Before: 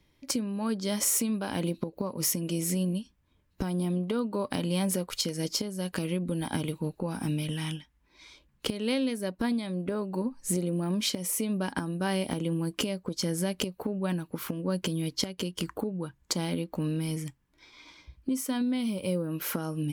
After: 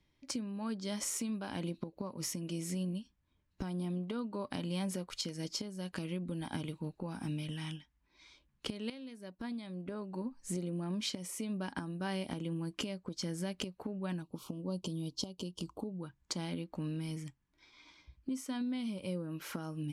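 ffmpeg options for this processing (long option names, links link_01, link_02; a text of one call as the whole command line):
ffmpeg -i in.wav -filter_complex "[0:a]asettb=1/sr,asplit=3[link_01][link_02][link_03];[link_01]atrim=end=14.224[link_04];[link_02]atrim=start=14.22:end=16.03,asetpts=PTS-STARTPTS,afade=type=in:duration=0.004:curve=qsin,afade=type=out:start_time=1.806:duration=0.004:curve=qsin,asuperstop=centerf=1800:order=4:qfactor=0.88[link_05];[link_03]atrim=start=16.026[link_06];[link_04][link_05]acrossfade=duration=0.004:curve1=hsin:curve2=qsin[link_07];[link_07][link_06]acrossfade=duration=0.004:curve1=qsin:curve2=hsin,asplit=2[link_08][link_09];[link_08]atrim=end=8.9,asetpts=PTS-STARTPTS,afade=type=out:start_time=8.896:duration=0.004:curve=hsin:silence=0.199526[link_10];[link_09]atrim=start=8.9,asetpts=PTS-STARTPTS,afade=type=in:duration=1.76:curve=qsin:silence=0.199526[link_11];[link_10][link_11]concat=n=2:v=0:a=1,lowpass=8100,equalizer=frequency=480:width_type=o:width=0.49:gain=-4,volume=-7.5dB" out.wav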